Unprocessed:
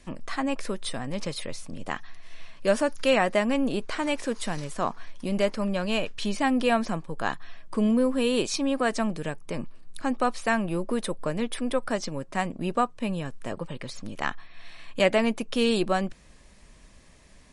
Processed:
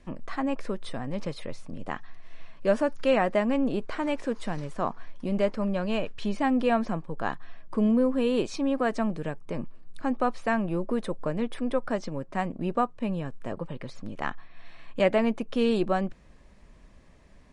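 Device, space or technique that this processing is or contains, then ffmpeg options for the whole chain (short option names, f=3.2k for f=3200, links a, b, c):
through cloth: -af "lowpass=9.5k,highshelf=f=2.6k:g=-12.5"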